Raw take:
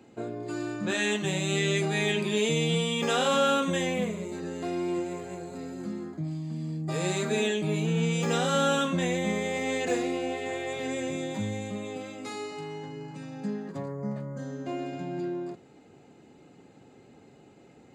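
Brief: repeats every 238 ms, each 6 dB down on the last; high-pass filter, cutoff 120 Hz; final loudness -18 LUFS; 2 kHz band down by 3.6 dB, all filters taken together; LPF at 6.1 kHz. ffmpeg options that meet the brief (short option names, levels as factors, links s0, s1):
-af "highpass=120,lowpass=6100,equalizer=f=2000:t=o:g=-4.5,aecho=1:1:238|476|714|952|1190|1428:0.501|0.251|0.125|0.0626|0.0313|0.0157,volume=3.76"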